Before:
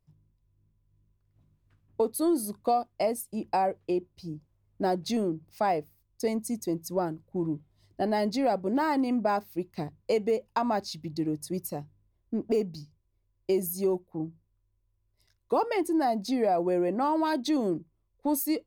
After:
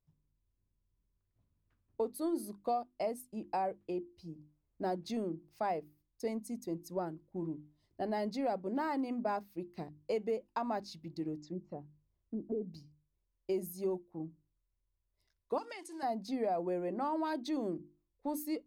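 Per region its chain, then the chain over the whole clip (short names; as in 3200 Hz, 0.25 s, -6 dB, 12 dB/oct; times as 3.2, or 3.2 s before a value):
11.37–12.73 treble ducked by the level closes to 420 Hz, closed at -27.5 dBFS + brick-wall FIR low-pass 7800 Hz
15.58–16.03 block floating point 7-bit + weighting filter ITU-R 468 + compressor 4:1, threshold -34 dBFS
whole clip: high shelf 4200 Hz -6 dB; notches 50/100/150/200/250/300/350 Hz; gain -8 dB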